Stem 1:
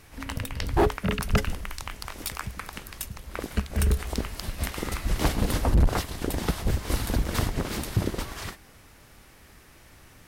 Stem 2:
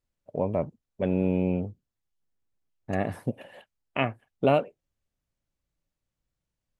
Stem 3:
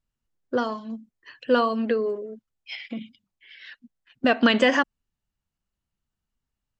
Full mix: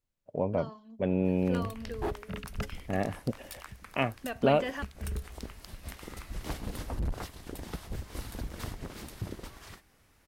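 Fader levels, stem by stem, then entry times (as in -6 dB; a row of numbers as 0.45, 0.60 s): -12.5, -2.5, -17.0 dB; 1.25, 0.00, 0.00 s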